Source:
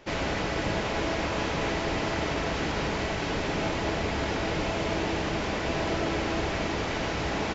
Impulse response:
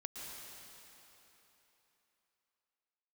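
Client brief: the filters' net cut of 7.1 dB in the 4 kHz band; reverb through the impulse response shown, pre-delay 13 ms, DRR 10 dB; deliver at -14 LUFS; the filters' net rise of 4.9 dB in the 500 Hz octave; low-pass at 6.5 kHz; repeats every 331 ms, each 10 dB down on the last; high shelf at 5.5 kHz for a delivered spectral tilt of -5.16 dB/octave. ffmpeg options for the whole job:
-filter_complex "[0:a]lowpass=6500,equalizer=f=500:t=o:g=6.5,equalizer=f=4000:t=o:g=-8,highshelf=f=5500:g=-4,aecho=1:1:331|662|993|1324:0.316|0.101|0.0324|0.0104,asplit=2[s0][s1];[1:a]atrim=start_sample=2205,adelay=13[s2];[s1][s2]afir=irnorm=-1:irlink=0,volume=0.376[s3];[s0][s3]amix=inputs=2:normalize=0,volume=4.22"

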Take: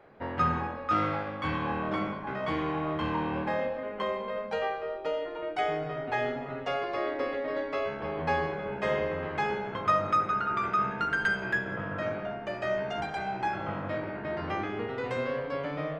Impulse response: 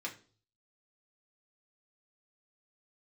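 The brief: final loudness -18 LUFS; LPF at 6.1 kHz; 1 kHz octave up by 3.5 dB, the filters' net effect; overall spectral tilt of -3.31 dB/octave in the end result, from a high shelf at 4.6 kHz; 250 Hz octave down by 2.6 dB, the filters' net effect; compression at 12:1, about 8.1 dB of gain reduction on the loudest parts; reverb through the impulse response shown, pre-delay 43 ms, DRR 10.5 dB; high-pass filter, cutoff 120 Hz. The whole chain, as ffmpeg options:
-filter_complex "[0:a]highpass=120,lowpass=6100,equalizer=f=250:t=o:g=-3.5,equalizer=f=1000:t=o:g=4.5,highshelf=f=4600:g=4.5,acompressor=threshold=0.0447:ratio=12,asplit=2[s0][s1];[1:a]atrim=start_sample=2205,adelay=43[s2];[s1][s2]afir=irnorm=-1:irlink=0,volume=0.266[s3];[s0][s3]amix=inputs=2:normalize=0,volume=5.01"

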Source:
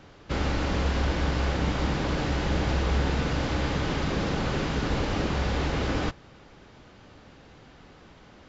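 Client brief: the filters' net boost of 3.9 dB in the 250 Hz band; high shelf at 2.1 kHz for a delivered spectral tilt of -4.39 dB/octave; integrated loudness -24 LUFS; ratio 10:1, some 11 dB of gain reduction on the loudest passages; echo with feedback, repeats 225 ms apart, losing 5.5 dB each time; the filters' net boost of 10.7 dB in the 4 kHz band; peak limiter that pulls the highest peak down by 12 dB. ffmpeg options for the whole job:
-af "equalizer=f=250:t=o:g=5,highshelf=f=2100:g=8,equalizer=f=4000:t=o:g=6,acompressor=threshold=0.0282:ratio=10,alimiter=level_in=2.99:limit=0.0631:level=0:latency=1,volume=0.335,aecho=1:1:225|450|675|900|1125|1350|1575:0.531|0.281|0.149|0.079|0.0419|0.0222|0.0118,volume=7.08"

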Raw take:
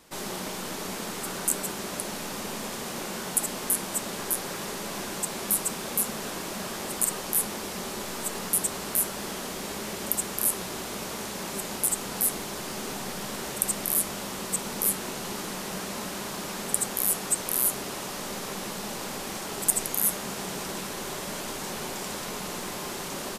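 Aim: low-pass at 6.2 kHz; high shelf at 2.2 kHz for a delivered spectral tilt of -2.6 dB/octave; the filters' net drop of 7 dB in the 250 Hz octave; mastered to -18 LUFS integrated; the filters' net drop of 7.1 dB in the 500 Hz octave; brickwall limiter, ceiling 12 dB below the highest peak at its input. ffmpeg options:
-af "lowpass=6200,equalizer=f=250:t=o:g=-8,equalizer=f=500:t=o:g=-6.5,highshelf=f=2200:g=-4.5,volume=11.2,alimiter=limit=0.447:level=0:latency=1"

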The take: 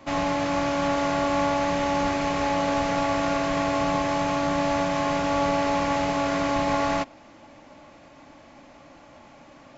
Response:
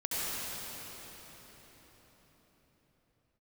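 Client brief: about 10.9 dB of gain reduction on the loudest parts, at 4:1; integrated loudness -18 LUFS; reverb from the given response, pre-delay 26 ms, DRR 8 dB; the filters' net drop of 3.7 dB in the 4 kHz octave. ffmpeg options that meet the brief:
-filter_complex "[0:a]equalizer=f=4000:t=o:g=-5,acompressor=threshold=0.02:ratio=4,asplit=2[s0][s1];[1:a]atrim=start_sample=2205,adelay=26[s2];[s1][s2]afir=irnorm=-1:irlink=0,volume=0.158[s3];[s0][s3]amix=inputs=2:normalize=0,volume=7.08"

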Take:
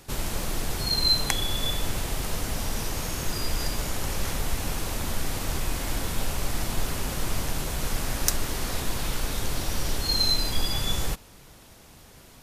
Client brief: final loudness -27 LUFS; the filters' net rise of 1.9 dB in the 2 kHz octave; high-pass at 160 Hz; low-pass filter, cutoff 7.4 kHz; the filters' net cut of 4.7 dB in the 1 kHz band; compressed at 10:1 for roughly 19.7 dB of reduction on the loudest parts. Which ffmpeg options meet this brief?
-af "highpass=160,lowpass=7400,equalizer=f=1000:t=o:g=-7.5,equalizer=f=2000:t=o:g=4.5,acompressor=threshold=0.01:ratio=10,volume=5.31"

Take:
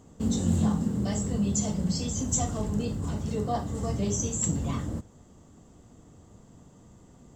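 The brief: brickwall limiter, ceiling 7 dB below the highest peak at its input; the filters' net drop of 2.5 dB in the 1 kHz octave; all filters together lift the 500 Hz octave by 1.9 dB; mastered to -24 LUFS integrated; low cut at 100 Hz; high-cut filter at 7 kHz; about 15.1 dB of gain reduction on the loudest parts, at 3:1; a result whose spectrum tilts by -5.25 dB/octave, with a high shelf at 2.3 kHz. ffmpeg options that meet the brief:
-af "highpass=100,lowpass=7000,equalizer=f=500:t=o:g=4,equalizer=f=1000:t=o:g=-6,highshelf=f=2300:g=-5.5,acompressor=threshold=0.00708:ratio=3,volume=12.6,alimiter=limit=0.2:level=0:latency=1"

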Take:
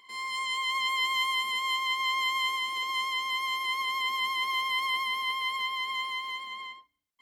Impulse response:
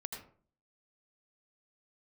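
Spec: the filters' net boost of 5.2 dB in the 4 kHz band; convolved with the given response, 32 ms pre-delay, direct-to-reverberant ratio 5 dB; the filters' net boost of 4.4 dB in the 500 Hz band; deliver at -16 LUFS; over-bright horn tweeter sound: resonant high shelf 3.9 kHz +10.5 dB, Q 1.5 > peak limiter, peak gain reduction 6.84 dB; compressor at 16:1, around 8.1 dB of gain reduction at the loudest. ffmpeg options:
-filter_complex "[0:a]equalizer=f=500:t=o:g=5.5,equalizer=f=4000:t=o:g=5,acompressor=threshold=0.0316:ratio=16,asplit=2[s0][s1];[1:a]atrim=start_sample=2205,adelay=32[s2];[s1][s2]afir=irnorm=-1:irlink=0,volume=0.631[s3];[s0][s3]amix=inputs=2:normalize=0,highshelf=f=3900:t=q:w=1.5:g=10.5,volume=7.94,alimiter=limit=0.316:level=0:latency=1"

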